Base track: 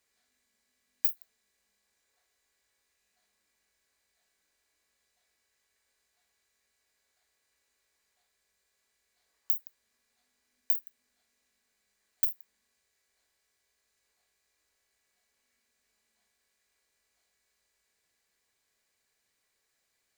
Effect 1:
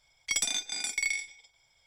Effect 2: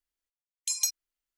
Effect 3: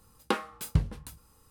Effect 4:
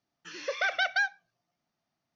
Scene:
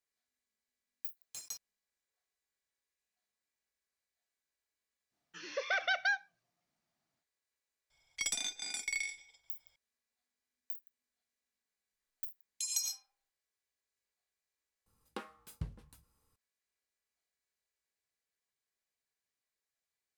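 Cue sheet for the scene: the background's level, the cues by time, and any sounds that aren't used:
base track -14.5 dB
0.67 s: add 2 -17 dB + block-companded coder 3-bit
5.09 s: add 4 -4.5 dB, fades 0.05 s
7.90 s: add 1 -6.5 dB
11.93 s: add 2 -8 dB + algorithmic reverb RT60 0.6 s, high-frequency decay 0.45×, pre-delay 55 ms, DRR 0.5 dB
14.86 s: add 3 -15.5 dB

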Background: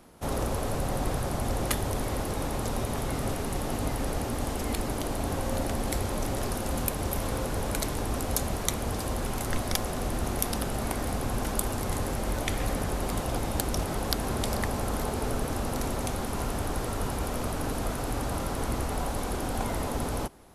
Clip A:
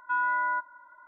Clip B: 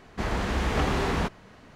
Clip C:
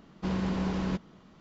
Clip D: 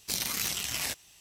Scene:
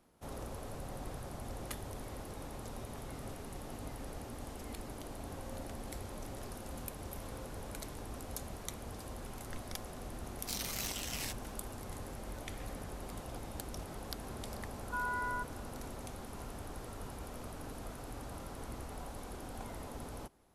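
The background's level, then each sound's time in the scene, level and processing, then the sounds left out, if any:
background -14.5 dB
10.39 s: add D -8.5 dB
14.83 s: add A -10 dB
not used: B, C

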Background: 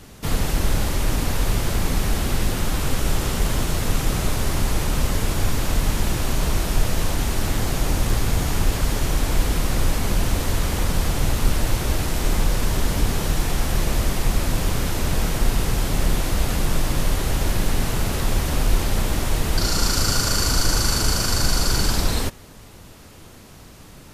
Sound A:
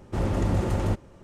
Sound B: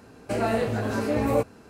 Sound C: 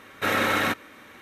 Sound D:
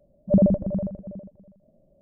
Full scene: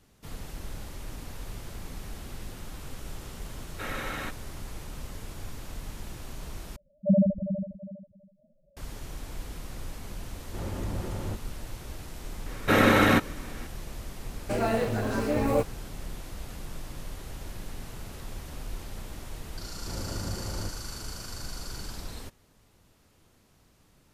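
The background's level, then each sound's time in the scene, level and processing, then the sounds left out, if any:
background -18.5 dB
3.57 s: add C -12.5 dB
6.76 s: replace with D -3.5 dB + spectral contrast enhancement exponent 2.6
10.41 s: add A -9.5 dB
12.46 s: add C -0.5 dB + bass shelf 490 Hz +11.5 dB
14.20 s: add B -2 dB + modulation noise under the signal 33 dB
19.74 s: add A -11.5 dB

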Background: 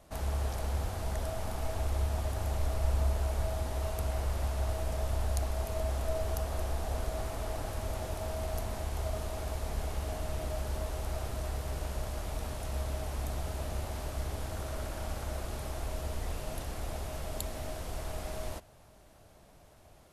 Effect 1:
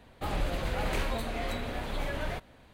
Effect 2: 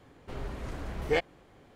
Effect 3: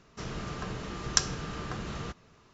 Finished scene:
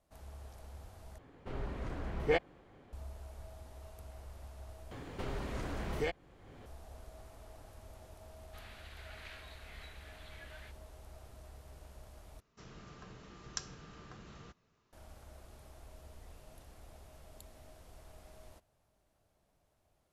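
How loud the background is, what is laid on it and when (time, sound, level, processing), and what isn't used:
background -17.5 dB
1.18 s: replace with 2 -2 dB + treble shelf 4.3 kHz -9.5 dB
4.91 s: replace with 2 -3 dB + three bands compressed up and down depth 70%
8.32 s: add 1 -13 dB + Chebyshev band-pass 1.5–4.6 kHz
12.40 s: replace with 3 -15.5 dB

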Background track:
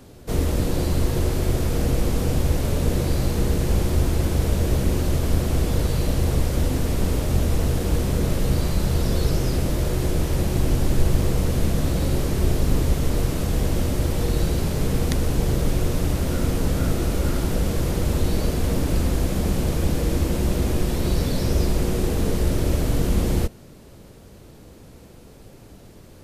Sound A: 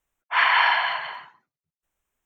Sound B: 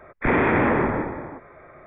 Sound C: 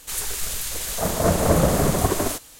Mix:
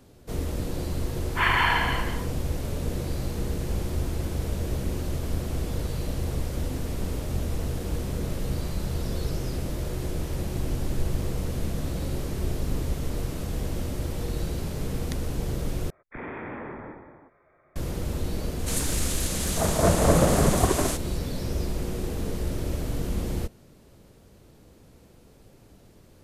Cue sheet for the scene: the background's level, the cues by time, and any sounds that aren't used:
background track -8 dB
1.04 s: add A -4 dB + tape noise reduction on one side only decoder only
15.90 s: replace with B -15.5 dB + peak limiter -14 dBFS
18.59 s: add C -1.5 dB + low-pass 12 kHz 24 dB/octave

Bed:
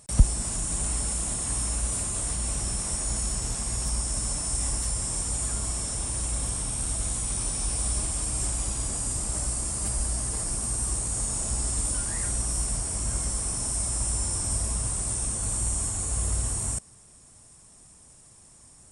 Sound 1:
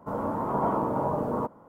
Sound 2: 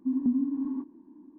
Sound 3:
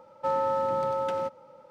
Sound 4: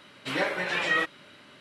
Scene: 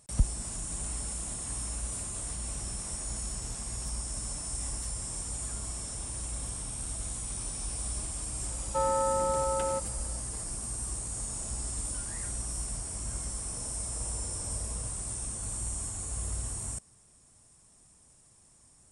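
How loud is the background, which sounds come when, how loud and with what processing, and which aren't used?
bed -7.5 dB
8.51 s: add 3 -1.5 dB
13.42 s: add 1 -17 dB + ladder band-pass 560 Hz, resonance 55%
not used: 2, 4

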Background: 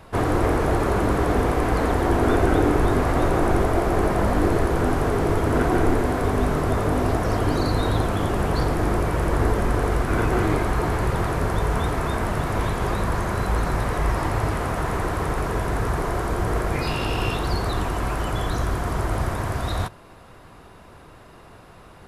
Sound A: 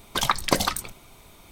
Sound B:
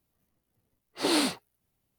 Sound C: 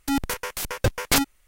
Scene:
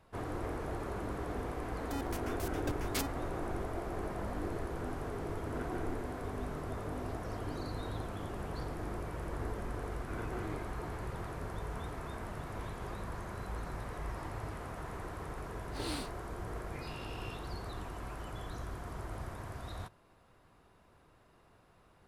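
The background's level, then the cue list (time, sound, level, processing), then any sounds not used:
background -18 dB
1.83 s: add C -17 dB
14.75 s: add B -14.5 dB
not used: A

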